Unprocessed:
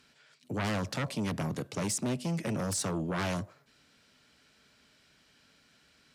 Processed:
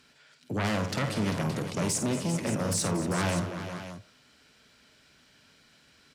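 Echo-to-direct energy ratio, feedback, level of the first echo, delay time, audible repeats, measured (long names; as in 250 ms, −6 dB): −4.0 dB, repeats not evenly spaced, −8.0 dB, 51 ms, 5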